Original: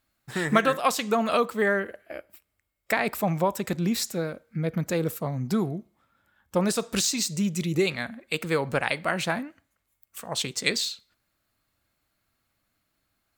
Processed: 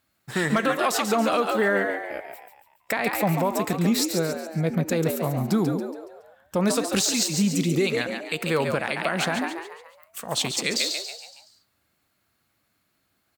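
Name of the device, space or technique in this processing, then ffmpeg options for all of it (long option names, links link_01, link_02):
clipper into limiter: -filter_complex "[0:a]highpass=73,asplit=6[link_01][link_02][link_03][link_04][link_05][link_06];[link_02]adelay=140,afreqshift=80,volume=-7.5dB[link_07];[link_03]adelay=280,afreqshift=160,volume=-14.2dB[link_08];[link_04]adelay=420,afreqshift=240,volume=-21dB[link_09];[link_05]adelay=560,afreqshift=320,volume=-27.7dB[link_10];[link_06]adelay=700,afreqshift=400,volume=-34.5dB[link_11];[link_01][link_07][link_08][link_09][link_10][link_11]amix=inputs=6:normalize=0,asoftclip=type=hard:threshold=-9dB,alimiter=limit=-16dB:level=0:latency=1:release=78,volume=3.5dB"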